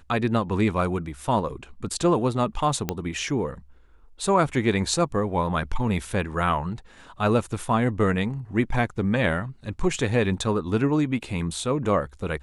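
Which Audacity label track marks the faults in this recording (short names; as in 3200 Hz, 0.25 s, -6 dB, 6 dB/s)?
2.890000	2.890000	pop -10 dBFS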